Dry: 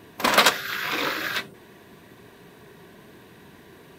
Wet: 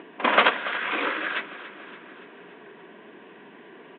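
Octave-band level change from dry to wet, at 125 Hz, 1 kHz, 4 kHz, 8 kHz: -9.0 dB, 0.0 dB, -5.5 dB, under -40 dB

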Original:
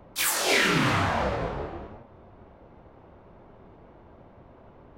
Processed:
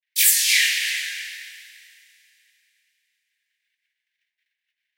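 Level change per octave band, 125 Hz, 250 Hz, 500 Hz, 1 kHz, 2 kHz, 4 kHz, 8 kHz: under -40 dB, under -40 dB, under -40 dB, under -30 dB, +3.5 dB, +7.5 dB, +10.5 dB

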